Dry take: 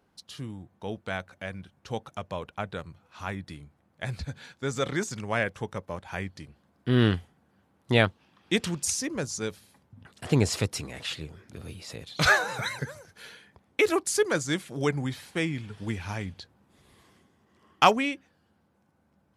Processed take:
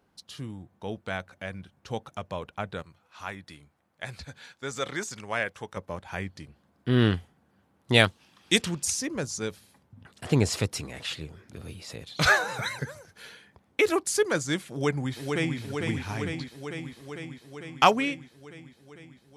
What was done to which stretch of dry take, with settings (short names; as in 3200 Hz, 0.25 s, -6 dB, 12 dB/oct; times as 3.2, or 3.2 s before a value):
2.82–5.77 low shelf 380 Hz -10 dB
7.94–8.62 bell 8600 Hz +13 dB 2.4 oct
14.71–15.58 echo throw 0.45 s, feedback 75%, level -4.5 dB